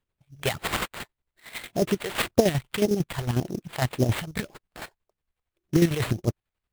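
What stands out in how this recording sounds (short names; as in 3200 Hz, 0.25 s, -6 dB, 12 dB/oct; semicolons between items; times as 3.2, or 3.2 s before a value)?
chopped level 11 Hz, depth 60%, duty 40%; phasing stages 2, 1.8 Hz, lowest notch 240–2200 Hz; aliases and images of a low sample rate 5900 Hz, jitter 20%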